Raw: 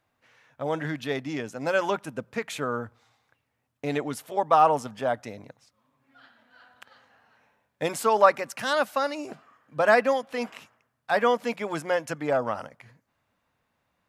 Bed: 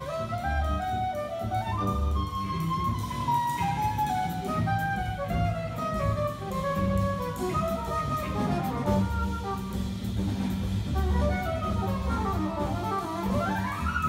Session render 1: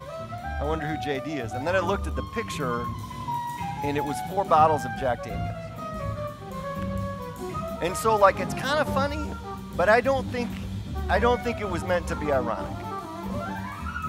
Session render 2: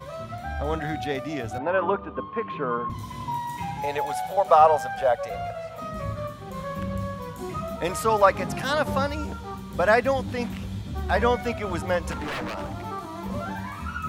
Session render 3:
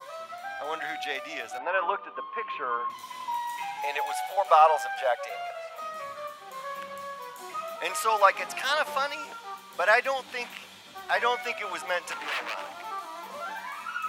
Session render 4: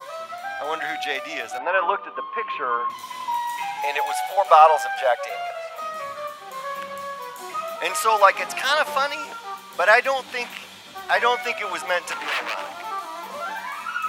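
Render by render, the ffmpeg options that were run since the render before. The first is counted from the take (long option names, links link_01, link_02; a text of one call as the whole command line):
ffmpeg -i in.wav -i bed.wav -filter_complex "[1:a]volume=-4dB[link_01];[0:a][link_01]amix=inputs=2:normalize=0" out.wav
ffmpeg -i in.wav -filter_complex "[0:a]asettb=1/sr,asplit=3[link_01][link_02][link_03];[link_01]atrim=end=1.584[link_04];[link_02]atrim=start=1.58:end=2.9,asetpts=PTS-STARTPTS,afade=type=in:duration=0.004:curve=qsin,afade=type=out:start_time=1.316:duration=0.004:curve=qsin,highpass=190,equalizer=frequency=420:width_type=q:width=4:gain=4,equalizer=frequency=1000:width_type=q:width=4:gain=4,equalizer=frequency=2100:width_type=q:width=4:gain=-7,lowpass=frequency=2600:width=0.5412,lowpass=frequency=2600:width=1.3066[link_05];[link_03]atrim=start=2.896[link_06];[link_04][link_05]acrossfade=duration=0.004:curve1=hsin:curve2=qsin[link_07];[link_07][link_06]acrossfade=duration=0.004:curve1=qsin:curve2=hsin,asettb=1/sr,asplit=3[link_08][link_09][link_10];[link_08]atrim=end=3.834[link_11];[link_09]atrim=start=3.83:end=5.81,asetpts=PTS-STARTPTS,afade=type=in:duration=0.004:curve=qsin,afade=type=out:start_time=1.976:duration=0.004:curve=qsin,lowshelf=frequency=420:width_type=q:width=3:gain=-8[link_12];[link_10]atrim=start=5.806[link_13];[link_11][link_12]acrossfade=duration=0.004:curve1=hsin:curve2=qsin[link_14];[link_14][link_13]acrossfade=duration=0.004:curve1=qsin:curve2=hsin,asettb=1/sr,asplit=3[link_15][link_16][link_17];[link_15]atrim=end=12.114[link_18];[link_16]atrim=start=12.11:end=12.76,asetpts=PTS-STARTPTS,afade=type=in:duration=0.004:curve=qsin,afade=type=out:start_time=0.646:duration=0.004:curve=qsin,aeval=exprs='0.0531*(abs(mod(val(0)/0.0531+3,4)-2)-1)':channel_layout=same[link_19];[link_17]atrim=start=12.756[link_20];[link_18][link_19]acrossfade=duration=0.004:curve1=hsin:curve2=qsin[link_21];[link_21][link_20]acrossfade=duration=0.004:curve1=qsin:curve2=hsin" out.wav
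ffmpeg -i in.wav -af "highpass=770,adynamicequalizer=threshold=0.00562:dfrequency=2600:dqfactor=1.9:tfrequency=2600:tqfactor=1.9:attack=5:release=100:ratio=0.375:range=2.5:mode=boostabove:tftype=bell" out.wav
ffmpeg -i in.wav -af "volume=6dB,alimiter=limit=-2dB:level=0:latency=1" out.wav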